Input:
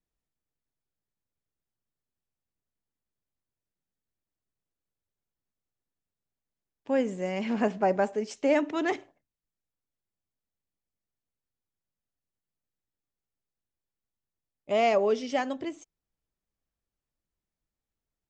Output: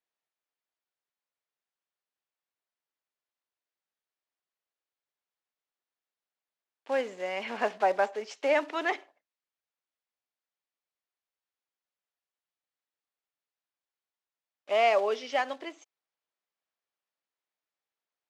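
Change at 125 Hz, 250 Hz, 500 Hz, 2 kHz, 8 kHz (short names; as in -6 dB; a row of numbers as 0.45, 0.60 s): n/a, -12.0 dB, -1.5 dB, +3.0 dB, -3.5 dB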